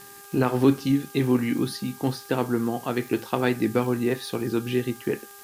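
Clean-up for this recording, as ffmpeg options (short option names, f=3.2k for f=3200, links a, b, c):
-af "adeclick=t=4,bandreject=f=401.3:t=h:w=4,bandreject=f=802.6:t=h:w=4,bandreject=f=1.2039k:t=h:w=4,bandreject=f=1.6052k:t=h:w=4,afftdn=nr=25:nf=-45"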